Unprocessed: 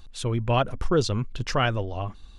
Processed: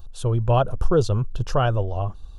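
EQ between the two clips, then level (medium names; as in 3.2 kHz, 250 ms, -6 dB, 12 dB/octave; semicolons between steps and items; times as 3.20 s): graphic EQ 250/1000/2000/4000/8000 Hz -11/-3/-7/-8/-7 dB; dynamic bell 5.4 kHz, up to -4 dB, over -57 dBFS, Q 2.6; peaking EQ 2.1 kHz -14 dB 0.51 oct; +7.5 dB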